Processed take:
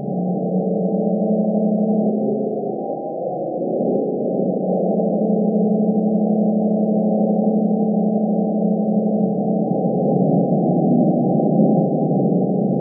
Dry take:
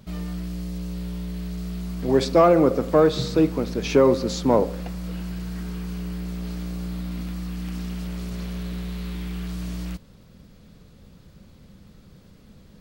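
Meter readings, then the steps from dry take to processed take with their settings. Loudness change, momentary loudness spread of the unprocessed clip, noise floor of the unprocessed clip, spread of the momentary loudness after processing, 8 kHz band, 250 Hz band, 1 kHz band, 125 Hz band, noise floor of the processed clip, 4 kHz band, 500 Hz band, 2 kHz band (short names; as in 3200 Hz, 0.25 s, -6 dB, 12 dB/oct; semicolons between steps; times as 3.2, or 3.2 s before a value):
+6.0 dB, 14 LU, -51 dBFS, 6 LU, under -40 dB, +10.5 dB, +4.5 dB, +8.5 dB, -24 dBFS, under -40 dB, +4.5 dB, under -40 dB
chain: delta modulation 32 kbps, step -20 dBFS; echoes that change speed 0.269 s, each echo +1 st, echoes 3; dynamic EQ 600 Hz, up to +6 dB, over -28 dBFS, Q 0.73; negative-ratio compressor -23 dBFS, ratio -1; split-band echo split 600 Hz, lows 0.207 s, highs 0.315 s, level -13.5 dB; Schroeder reverb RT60 2.9 s, combs from 29 ms, DRR -5.5 dB; FFT band-pass 130–810 Hz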